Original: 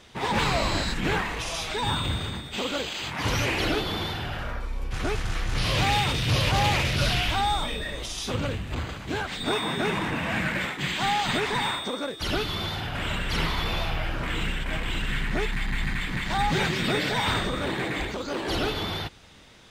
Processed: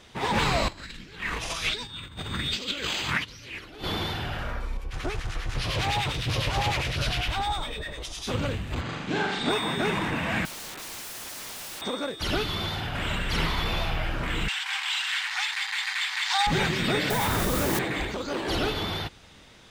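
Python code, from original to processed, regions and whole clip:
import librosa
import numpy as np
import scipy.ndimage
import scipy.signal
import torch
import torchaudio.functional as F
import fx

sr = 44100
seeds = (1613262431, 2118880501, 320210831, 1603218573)

y = fx.chain(x, sr, fx.peak_eq(hz=800.0, db=-10.0, octaves=0.98),
    fx.over_compress(threshold_db=-35.0, ratio=-0.5),
    fx.bell_lfo(hz=1.3, low_hz=750.0, high_hz=5200.0, db=11), at=(0.68, 3.84))
y = fx.chain(y, sr, fx.peak_eq(hz=220.0, db=-5.5, octaves=0.53),
    fx.harmonic_tremolo(hz=9.9, depth_pct=70, crossover_hz=1100.0),
    fx.doppler_dist(depth_ms=0.26), at=(4.77, 8.27))
y = fx.chain(y, sr, fx.lowpass(hz=6700.0, slope=12),
    fx.low_shelf_res(hz=110.0, db=-11.0, q=1.5),
    fx.room_flutter(wall_m=7.2, rt60_s=0.8), at=(8.81, 9.5))
y = fx.chain(y, sr, fx.peak_eq(hz=5200.0, db=-10.5, octaves=2.5),
    fx.overflow_wrap(gain_db=34.0), at=(10.45, 11.82))
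y = fx.chain(y, sr, fx.brickwall_highpass(low_hz=730.0),
    fx.peak_eq(hz=5100.0, db=12.0, octaves=1.5), at=(14.48, 16.47))
y = fx.chain(y, sr, fx.lowpass(hz=1400.0, slope=6),
    fx.quant_dither(seeds[0], bits=6, dither='triangular'),
    fx.env_flatten(amount_pct=100), at=(17.1, 17.79))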